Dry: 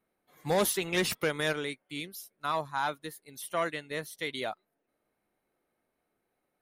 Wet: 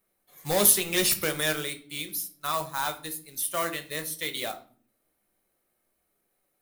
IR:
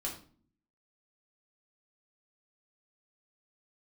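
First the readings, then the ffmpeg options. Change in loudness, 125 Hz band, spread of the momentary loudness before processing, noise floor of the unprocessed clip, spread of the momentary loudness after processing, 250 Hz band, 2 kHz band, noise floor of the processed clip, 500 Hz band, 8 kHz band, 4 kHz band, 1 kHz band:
+5.5 dB, +1.0 dB, 15 LU, -82 dBFS, 16 LU, +1.5 dB, +2.0 dB, -76 dBFS, +0.5 dB, +12.5 dB, +6.0 dB, +1.0 dB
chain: -filter_complex "[0:a]acrusher=bits=4:mode=log:mix=0:aa=0.000001,crystalizer=i=3:c=0,asplit=2[a][b];[1:a]atrim=start_sample=2205,lowshelf=f=95:g=8.5[c];[b][c]afir=irnorm=-1:irlink=0,volume=-3dB[d];[a][d]amix=inputs=2:normalize=0,volume=-4.5dB"

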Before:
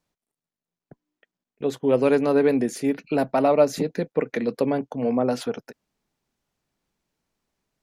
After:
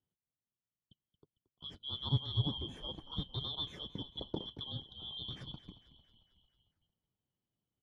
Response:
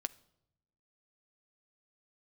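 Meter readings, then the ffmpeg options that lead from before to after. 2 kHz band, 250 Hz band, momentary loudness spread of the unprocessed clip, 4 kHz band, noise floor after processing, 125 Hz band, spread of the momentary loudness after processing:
-28.5 dB, -22.5 dB, 10 LU, +4.5 dB, under -85 dBFS, -3.5 dB, 13 LU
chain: -filter_complex "[0:a]afftfilt=real='real(if(lt(b,272),68*(eq(floor(b/68),0)*1+eq(floor(b/68),1)*3+eq(floor(b/68),2)*0+eq(floor(b/68),3)*2)+mod(b,68),b),0)':imag='imag(if(lt(b,272),68*(eq(floor(b/68),0)*1+eq(floor(b/68),1)*3+eq(floor(b/68),2)*0+eq(floor(b/68),3)*2)+mod(b,68),b),0)':win_size=2048:overlap=0.75,bandpass=f=130:t=q:w=1.5:csg=0,asplit=7[a][b][c][d][e][f][g];[b]adelay=225,afreqshift=-36,volume=-15.5dB[h];[c]adelay=450,afreqshift=-72,volume=-19.9dB[i];[d]adelay=675,afreqshift=-108,volume=-24.4dB[j];[e]adelay=900,afreqshift=-144,volume=-28.8dB[k];[f]adelay=1125,afreqshift=-180,volume=-33.2dB[l];[g]adelay=1350,afreqshift=-216,volume=-37.7dB[m];[a][h][i][j][k][l][m]amix=inputs=7:normalize=0,volume=8.5dB"

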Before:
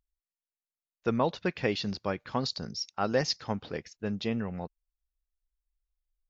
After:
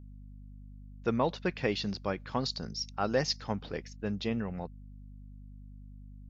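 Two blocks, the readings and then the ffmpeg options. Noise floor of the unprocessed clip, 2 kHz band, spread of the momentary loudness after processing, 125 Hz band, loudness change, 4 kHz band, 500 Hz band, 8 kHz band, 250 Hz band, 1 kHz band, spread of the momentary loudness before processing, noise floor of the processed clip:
under -85 dBFS, -1.5 dB, 21 LU, -0.5 dB, -1.5 dB, -1.5 dB, -1.5 dB, n/a, -1.5 dB, -1.5 dB, 8 LU, -48 dBFS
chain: -af "acontrast=72,aeval=exprs='val(0)+0.0112*(sin(2*PI*50*n/s)+sin(2*PI*2*50*n/s)/2+sin(2*PI*3*50*n/s)/3+sin(2*PI*4*50*n/s)/4+sin(2*PI*5*50*n/s)/5)':c=same,volume=-8dB"

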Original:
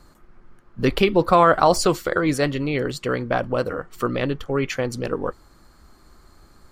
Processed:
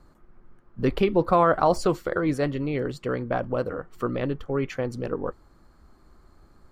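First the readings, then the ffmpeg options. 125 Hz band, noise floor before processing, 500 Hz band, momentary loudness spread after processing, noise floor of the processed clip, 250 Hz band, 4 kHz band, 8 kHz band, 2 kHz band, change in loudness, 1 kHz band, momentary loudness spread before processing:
-3.0 dB, -53 dBFS, -3.5 dB, 10 LU, -57 dBFS, -3.0 dB, -11.0 dB, -13.0 dB, -7.5 dB, -4.5 dB, -5.0 dB, 11 LU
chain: -af "highshelf=f=2k:g=-10.5,volume=-3dB"

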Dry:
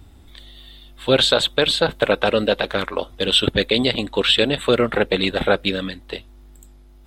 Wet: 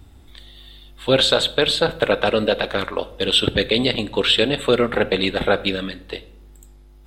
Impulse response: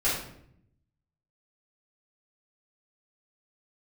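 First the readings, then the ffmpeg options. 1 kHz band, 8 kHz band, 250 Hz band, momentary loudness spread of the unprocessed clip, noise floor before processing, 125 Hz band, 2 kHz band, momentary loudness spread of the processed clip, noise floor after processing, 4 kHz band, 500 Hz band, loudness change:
0.0 dB, -0.5 dB, -0.5 dB, 11 LU, -47 dBFS, -0.5 dB, -0.5 dB, 11 LU, -46 dBFS, -0.5 dB, 0.0 dB, -0.5 dB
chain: -filter_complex "[0:a]asplit=2[a][b];[1:a]atrim=start_sample=2205[c];[b][c]afir=irnorm=-1:irlink=0,volume=-24dB[d];[a][d]amix=inputs=2:normalize=0,volume=-1dB"

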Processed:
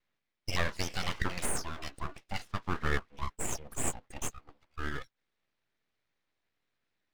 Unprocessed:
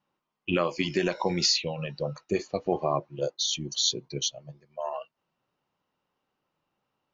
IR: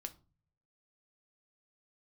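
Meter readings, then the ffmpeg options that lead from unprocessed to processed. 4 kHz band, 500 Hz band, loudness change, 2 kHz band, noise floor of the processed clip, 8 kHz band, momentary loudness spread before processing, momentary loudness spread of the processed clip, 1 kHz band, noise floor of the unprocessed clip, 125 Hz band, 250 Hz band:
-13.5 dB, -13.5 dB, -8.5 dB, 0.0 dB, -84 dBFS, n/a, 12 LU, 11 LU, -5.5 dB, -82 dBFS, -3.5 dB, -10.0 dB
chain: -filter_complex "[0:a]acrossover=split=570 4200:gain=0.2 1 0.0891[a][b][c];[a][b][c]amix=inputs=3:normalize=0,aeval=exprs='abs(val(0))':c=same,volume=1.5dB"

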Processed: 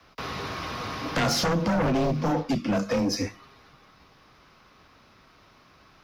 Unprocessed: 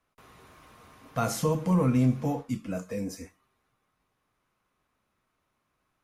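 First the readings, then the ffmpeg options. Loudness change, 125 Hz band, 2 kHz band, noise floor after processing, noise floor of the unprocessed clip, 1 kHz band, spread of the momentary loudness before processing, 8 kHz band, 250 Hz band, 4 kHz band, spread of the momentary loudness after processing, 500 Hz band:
+1.5 dB, -1.0 dB, +12.0 dB, -57 dBFS, -78 dBFS, +6.5 dB, 12 LU, +5.0 dB, +2.0 dB, +15.0 dB, 9 LU, +4.5 dB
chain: -filter_complex "[0:a]acrossover=split=160|1500[a][b][c];[a]acrusher=bits=6:mode=log:mix=0:aa=0.000001[d];[d][b][c]amix=inputs=3:normalize=0,afreqshift=17,highshelf=f=6.5k:t=q:w=3:g=-9,acompressor=threshold=-46dB:ratio=2,aeval=exprs='0.0422*sin(PI/2*2.82*val(0)/0.0422)':c=same,volume=7.5dB"

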